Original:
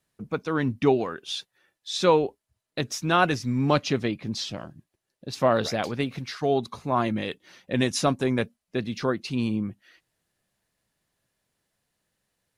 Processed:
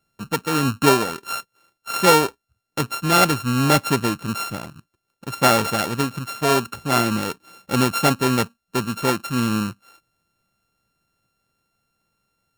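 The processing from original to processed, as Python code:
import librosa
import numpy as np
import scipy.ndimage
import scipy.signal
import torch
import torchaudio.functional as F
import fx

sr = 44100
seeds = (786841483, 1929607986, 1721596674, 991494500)

y = np.r_[np.sort(x[:len(x) // 32 * 32].reshape(-1, 32), axis=1).ravel(), x[len(x) // 32 * 32:]]
y = F.gain(torch.from_numpy(y), 5.0).numpy()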